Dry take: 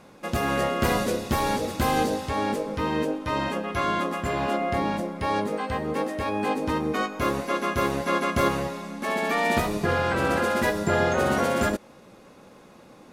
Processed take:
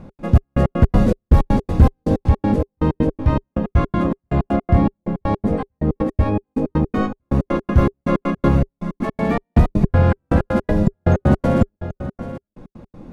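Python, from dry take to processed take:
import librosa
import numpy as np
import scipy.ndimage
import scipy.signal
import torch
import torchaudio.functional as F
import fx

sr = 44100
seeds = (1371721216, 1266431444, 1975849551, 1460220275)

p1 = fx.low_shelf(x, sr, hz=260.0, db=8.0)
p2 = p1 + 10.0 ** (-14.0 / 20.0) * np.pad(p1, (int(782 * sr / 1000.0), 0))[:len(p1)]
p3 = fx.step_gate(p2, sr, bpm=160, pattern='x.xx..x.', floor_db=-60.0, edge_ms=4.5)
p4 = fx.tilt_eq(p3, sr, slope=-3.5)
p5 = fx.notch(p4, sr, hz=400.0, q=12.0)
p6 = fx.fold_sine(p5, sr, drive_db=6, ceiling_db=3.0)
p7 = p5 + (p6 * librosa.db_to_amplitude(-6.0))
y = p7 * librosa.db_to_amplitude(-7.0)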